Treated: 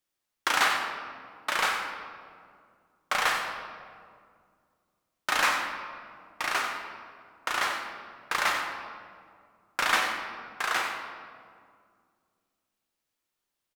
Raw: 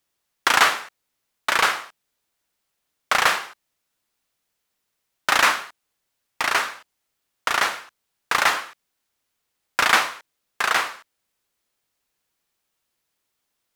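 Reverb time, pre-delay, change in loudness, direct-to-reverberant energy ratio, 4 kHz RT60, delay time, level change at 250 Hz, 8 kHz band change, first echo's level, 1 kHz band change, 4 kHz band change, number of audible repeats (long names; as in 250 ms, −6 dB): 2.1 s, 3 ms, −7.5 dB, 2.0 dB, 1.2 s, 92 ms, −5.0 dB, −7.5 dB, −9.5 dB, −6.5 dB, −7.0 dB, 1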